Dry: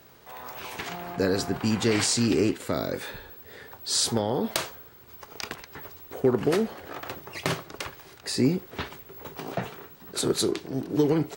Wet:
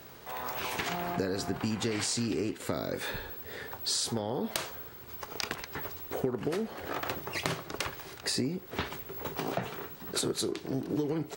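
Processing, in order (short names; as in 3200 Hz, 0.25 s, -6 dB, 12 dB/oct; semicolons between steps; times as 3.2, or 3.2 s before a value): compressor 8:1, threshold -32 dBFS, peak gain reduction 15 dB; gain +3.5 dB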